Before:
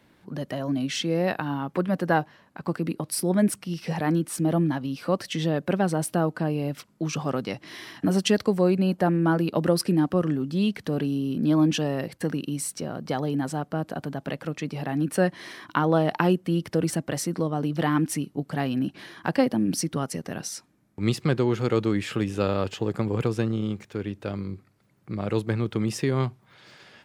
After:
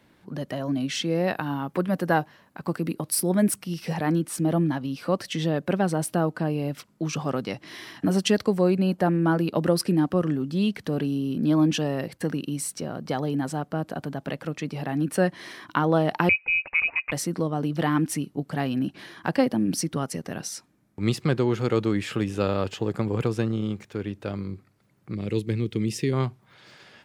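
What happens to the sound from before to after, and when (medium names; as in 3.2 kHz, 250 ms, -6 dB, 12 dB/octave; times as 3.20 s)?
1.35–3.94 s: treble shelf 11 kHz +10.5 dB
16.29–17.12 s: frequency inversion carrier 2.7 kHz
25.15–26.13 s: high-order bell 960 Hz -12.5 dB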